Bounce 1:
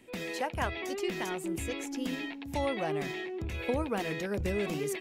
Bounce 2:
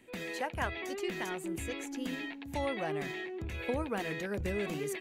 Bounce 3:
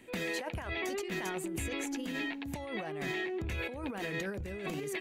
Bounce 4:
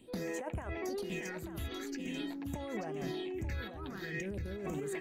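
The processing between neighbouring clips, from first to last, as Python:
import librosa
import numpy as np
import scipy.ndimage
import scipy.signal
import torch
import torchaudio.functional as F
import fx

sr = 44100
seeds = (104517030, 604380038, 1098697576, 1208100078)

y1 = fx.peak_eq(x, sr, hz=1700.0, db=3.5, octaves=0.59)
y1 = fx.notch(y1, sr, hz=5300.0, q=11.0)
y1 = y1 * 10.0 ** (-3.0 / 20.0)
y2 = fx.over_compress(y1, sr, threshold_db=-39.0, ratio=-1.0)
y2 = y2 * 10.0 ** (2.0 / 20.0)
y3 = fx.phaser_stages(y2, sr, stages=6, low_hz=590.0, high_hz=4400.0, hz=0.46, feedback_pct=40)
y3 = y3 + 10.0 ** (-9.0 / 20.0) * np.pad(y3, (int(887 * sr / 1000.0), 0))[:len(y3)]
y3 = y3 * 10.0 ** (-2.0 / 20.0)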